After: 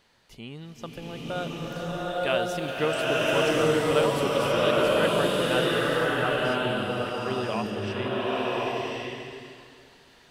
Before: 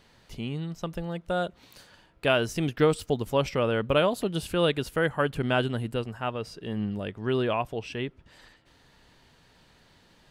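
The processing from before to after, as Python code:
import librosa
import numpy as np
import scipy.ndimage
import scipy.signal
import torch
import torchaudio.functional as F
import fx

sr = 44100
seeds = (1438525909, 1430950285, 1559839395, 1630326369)

y = fx.low_shelf(x, sr, hz=270.0, db=-8.0)
y = fx.rev_bloom(y, sr, seeds[0], attack_ms=1080, drr_db=-7.0)
y = y * librosa.db_to_amplitude(-3.0)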